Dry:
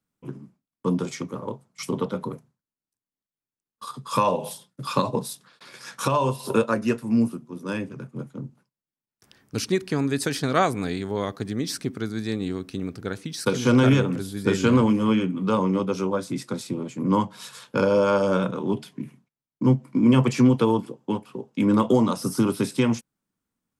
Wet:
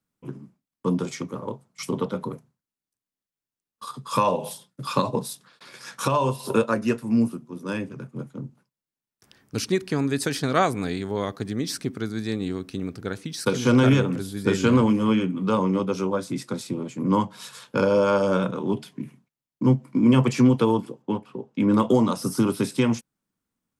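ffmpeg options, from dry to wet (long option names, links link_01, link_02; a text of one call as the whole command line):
ffmpeg -i in.wav -filter_complex "[0:a]asettb=1/sr,asplit=3[link_01][link_02][link_03];[link_01]atrim=end=21.024[link_04];[link_02]atrim=start=21.02:end=21.72,asetpts=PTS-STARTPTS,afade=type=in:duration=0.004:curve=qsin,afade=type=out:start_time=0.696:duration=0.004:curve=qsin,aemphasis=mode=reproduction:type=50kf[link_05];[link_03]atrim=start=21.716[link_06];[link_04][link_05]acrossfade=duration=0.004:curve1=hsin:curve2=qsin[link_07];[link_07][link_06]acrossfade=duration=0.004:curve1=qsin:curve2=hsin" out.wav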